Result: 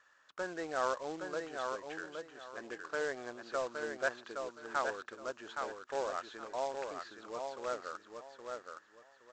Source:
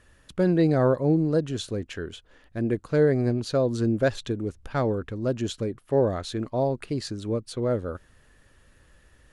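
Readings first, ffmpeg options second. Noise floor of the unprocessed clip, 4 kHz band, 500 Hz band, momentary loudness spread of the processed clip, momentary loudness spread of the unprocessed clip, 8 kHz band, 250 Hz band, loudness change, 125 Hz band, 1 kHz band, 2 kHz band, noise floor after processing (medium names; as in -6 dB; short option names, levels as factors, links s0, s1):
-59 dBFS, -11.0 dB, -13.5 dB, 10 LU, 11 LU, -7.5 dB, -23.0 dB, -14.0 dB, -35.0 dB, -3.0 dB, -1.5 dB, -66 dBFS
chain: -filter_complex "[0:a]acontrast=28,highshelf=f=1800:t=q:w=1.5:g=-8,acrossover=split=3100[s0][s1];[s1]acompressor=threshold=0.001:ratio=4:attack=1:release=60[s2];[s0][s2]amix=inputs=2:normalize=0,highpass=1200,aresample=16000,acrusher=bits=3:mode=log:mix=0:aa=0.000001,aresample=44100,aecho=1:1:818|1636|2454:0.562|0.135|0.0324,volume=0.562"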